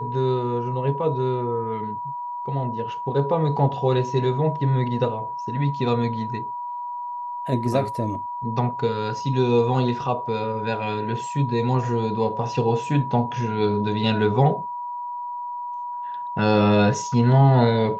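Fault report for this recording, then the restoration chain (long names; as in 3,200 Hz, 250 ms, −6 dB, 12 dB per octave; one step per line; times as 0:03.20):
whistle 970 Hz −28 dBFS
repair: notch filter 970 Hz, Q 30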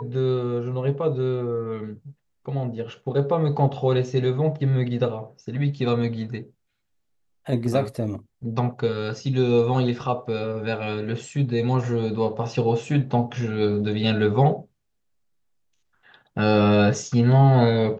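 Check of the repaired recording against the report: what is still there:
none of them is left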